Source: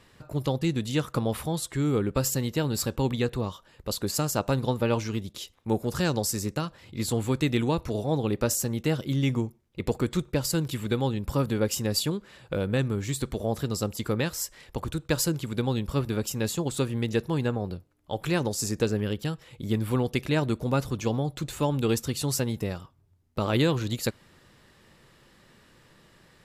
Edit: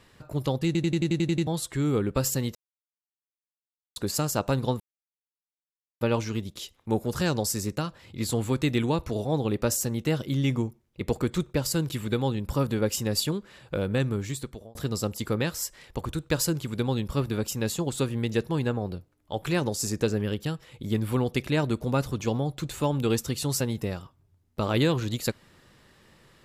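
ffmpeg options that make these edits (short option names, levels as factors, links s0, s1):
-filter_complex "[0:a]asplit=14[s0][s1][s2][s3][s4][s5][s6][s7][s8][s9][s10][s11][s12][s13];[s0]atrim=end=0.752[s14];[s1]atrim=start=0.658:end=0.752[s15];[s2]atrim=start=0.658:end=0.752[s16];[s3]atrim=start=0.658:end=0.752[s17];[s4]atrim=start=0.658:end=0.752[s18];[s5]atrim=start=0.658:end=0.752[s19];[s6]atrim=start=0.658:end=0.752[s20];[s7]atrim=start=0.658:end=0.752[s21];[s8]atrim=start=0.658:end=0.752[s22];[s9]atrim=start=1.468:end=2.55,asetpts=PTS-STARTPTS,afade=t=out:st=1.078:d=0.004:c=hsin[s23];[s10]atrim=start=2.55:end=3.96,asetpts=PTS-STARTPTS,volume=0[s24];[s11]atrim=start=3.96:end=4.8,asetpts=PTS-STARTPTS,afade=t=in:d=0.004:c=hsin,afade=t=out:st=0.836:d=0.004:c=hsin,apad=pad_dur=1.21[s25];[s12]atrim=start=4.8:end=13.54,asetpts=PTS-STARTPTS,afade=t=in:d=0.004:c=hsin,afade=t=out:st=8.15:d=0.59[s26];[s13]atrim=start=13.54,asetpts=PTS-STARTPTS,afade=t=in:d=0.004:c=hsin[s27];[s14][s15]acrossfade=d=0.004:c1=hsin:c2=hsin[s28];[s28][s16]acrossfade=d=0.004:c1=hsin:c2=hsin[s29];[s29][s17]acrossfade=d=0.004:c1=hsin:c2=hsin[s30];[s30][s18]acrossfade=d=0.004:c1=hsin:c2=hsin[s31];[s31][s19]acrossfade=d=0.004:c1=hsin:c2=hsin[s32];[s32][s20]acrossfade=d=0.004:c1=hsin:c2=hsin[s33];[s33][s21]acrossfade=d=0.004:c1=hsin:c2=hsin[s34];[s34][s22]acrossfade=d=0.004:c1=hsin:c2=hsin[s35];[s23][s24][s25][s26][s27]concat=n=5:v=0:a=1[s36];[s35][s36]acrossfade=d=0.004:c1=hsin:c2=hsin"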